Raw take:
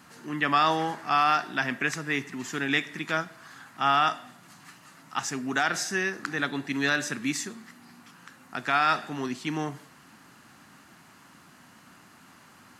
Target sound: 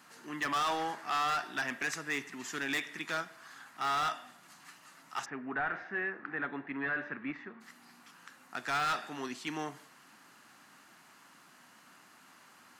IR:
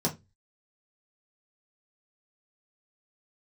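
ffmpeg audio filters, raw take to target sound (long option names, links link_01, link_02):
-filter_complex "[0:a]highpass=frequency=450:poles=1,asoftclip=type=hard:threshold=-24.5dB,asplit=3[link_01][link_02][link_03];[link_01]afade=type=out:start_time=5.24:duration=0.02[link_04];[link_02]lowpass=frequency=2100:width=0.5412,lowpass=frequency=2100:width=1.3066,afade=type=in:start_time=5.24:duration=0.02,afade=type=out:start_time=7.6:duration=0.02[link_05];[link_03]afade=type=in:start_time=7.6:duration=0.02[link_06];[link_04][link_05][link_06]amix=inputs=3:normalize=0,volume=-3.5dB"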